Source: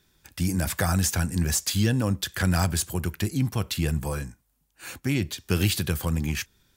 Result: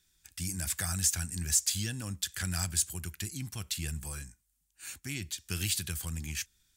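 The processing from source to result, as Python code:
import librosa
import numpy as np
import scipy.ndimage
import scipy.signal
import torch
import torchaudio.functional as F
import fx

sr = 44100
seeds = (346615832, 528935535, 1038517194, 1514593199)

y = fx.graphic_eq(x, sr, hz=(125, 250, 500, 1000, 8000), db=(-6, -6, -12, -7, 8))
y = y * 10.0 ** (-6.5 / 20.0)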